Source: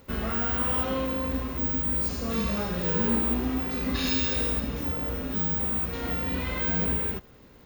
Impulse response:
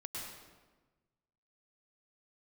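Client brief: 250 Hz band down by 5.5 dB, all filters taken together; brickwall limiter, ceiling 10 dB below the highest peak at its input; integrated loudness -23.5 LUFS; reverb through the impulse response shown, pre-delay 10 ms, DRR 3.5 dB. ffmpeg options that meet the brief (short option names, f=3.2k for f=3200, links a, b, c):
-filter_complex "[0:a]equalizer=f=250:t=o:g=-6.5,alimiter=level_in=2.5dB:limit=-24dB:level=0:latency=1,volume=-2.5dB,asplit=2[a][b];[1:a]atrim=start_sample=2205,adelay=10[c];[b][c]afir=irnorm=-1:irlink=0,volume=-3dB[d];[a][d]amix=inputs=2:normalize=0,volume=8.5dB"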